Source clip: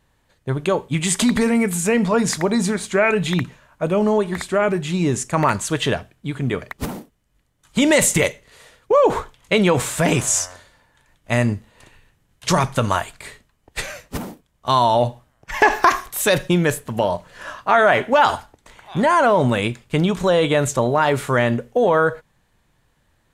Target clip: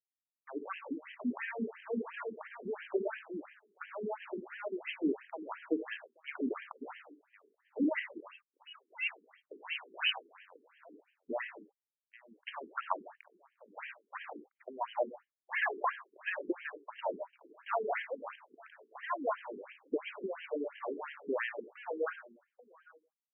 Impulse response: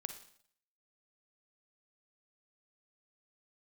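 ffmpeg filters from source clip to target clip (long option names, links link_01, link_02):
-filter_complex "[0:a]acompressor=threshold=-24dB:ratio=16,tremolo=f=1.4:d=0.68,aeval=exprs='val(0)*gte(abs(val(0)),0.0126)':channel_layout=same,aecho=1:1:832:0.0708[link_01];[1:a]atrim=start_sample=2205,atrim=end_sample=6615[link_02];[link_01][link_02]afir=irnorm=-1:irlink=0,asettb=1/sr,asplit=3[link_03][link_04][link_05];[link_03]atrim=end=8.204[link_06];[link_04]atrim=start=8.2:end=10.39,asetpts=PTS-STARTPTS,afade=type=in:duration=0.004:curve=qsin,afade=type=out:start_time=2.186:duration=0.004:curve=qsin,lowpass=frequency=2700:width_type=q:width=0.5098,lowpass=frequency=2700:width_type=q:width=0.6013,lowpass=frequency=2700:width_type=q:width=0.9,lowpass=frequency=2700:width_type=q:width=2.563,afreqshift=-3200[link_07];[link_05]atrim=start=10.386[link_08];[link_06][link_07]acrossfade=duration=0.004:curve1=hsin:curve2=qsin[link_09];[link_09][link_08]acrossfade=duration=0.004:curve1=qsin:curve2=hsin,afftfilt=real='re*between(b*sr/1024,300*pow(2300/300,0.5+0.5*sin(2*PI*2.9*pts/sr))/1.41,300*pow(2300/300,0.5+0.5*sin(2*PI*2.9*pts/sr))*1.41)':imag='im*between(b*sr/1024,300*pow(2300/300,0.5+0.5*sin(2*PI*2.9*pts/sr))/1.41,300*pow(2300/300,0.5+0.5*sin(2*PI*2.9*pts/sr))*1.41)':win_size=1024:overlap=0.75,volume=3.5dB"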